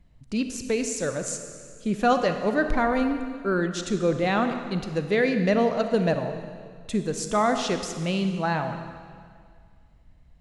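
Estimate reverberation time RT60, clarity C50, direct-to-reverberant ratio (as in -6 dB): 2.0 s, 7.5 dB, 7.0 dB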